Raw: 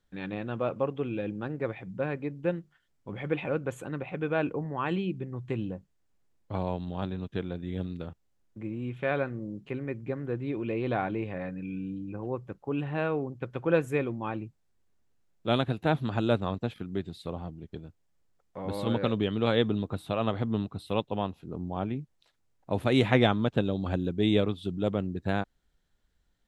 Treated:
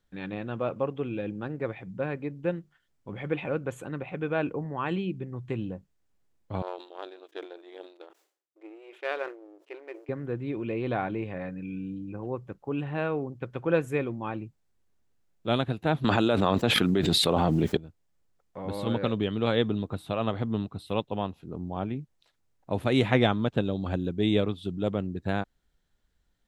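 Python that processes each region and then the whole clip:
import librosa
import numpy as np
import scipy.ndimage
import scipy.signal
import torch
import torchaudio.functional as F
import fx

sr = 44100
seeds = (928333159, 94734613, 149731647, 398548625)

y = fx.chain(x, sr, fx.power_curve(exponent=1.4),
    fx.brickwall_highpass(low_hz=300.0),
    fx.sustainer(db_per_s=130.0), at=(6.62, 10.09))
y = fx.chain(y, sr, fx.highpass(hz=300.0, slope=6),
    fx.env_flatten(amount_pct=100), at=(16.04, 17.77))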